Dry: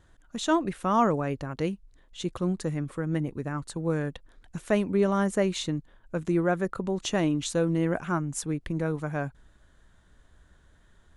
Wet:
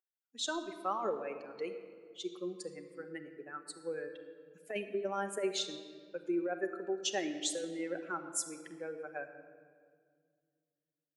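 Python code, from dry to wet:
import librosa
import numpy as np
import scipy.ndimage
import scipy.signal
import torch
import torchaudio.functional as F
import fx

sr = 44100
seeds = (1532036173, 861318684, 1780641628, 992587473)

y = fx.bin_expand(x, sr, power=2.0)
y = scipy.signal.sosfilt(scipy.signal.butter(4, 380.0, 'highpass', fs=sr, output='sos'), y)
y = fx.dynamic_eq(y, sr, hz=1100.0, q=0.71, threshold_db=-43.0, ratio=4.0, max_db=-5)
y = fx.over_compress(y, sr, threshold_db=-34.0, ratio=-1.0)
y = fx.room_shoebox(y, sr, seeds[0], volume_m3=3300.0, walls='mixed', distance_m=1.1)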